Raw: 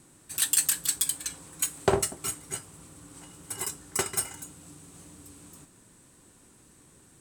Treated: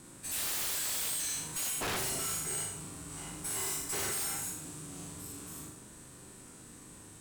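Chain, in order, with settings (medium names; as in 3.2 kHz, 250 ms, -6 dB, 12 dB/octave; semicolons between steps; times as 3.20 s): every event in the spectrogram widened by 120 ms; flutter echo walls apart 6.7 m, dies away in 0.5 s; integer overflow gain 13.5 dB; valve stage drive 33 dB, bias 0.35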